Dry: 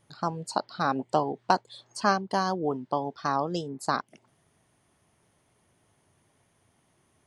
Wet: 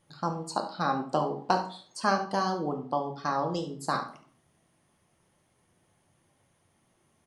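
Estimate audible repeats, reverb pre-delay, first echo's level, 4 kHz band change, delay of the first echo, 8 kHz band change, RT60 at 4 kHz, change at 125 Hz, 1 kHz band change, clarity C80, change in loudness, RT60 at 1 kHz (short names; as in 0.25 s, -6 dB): 1, 4 ms, -13.0 dB, -1.5 dB, 71 ms, -2.0 dB, 0.35 s, -0.5 dB, -1.5 dB, 14.5 dB, -1.5 dB, 0.45 s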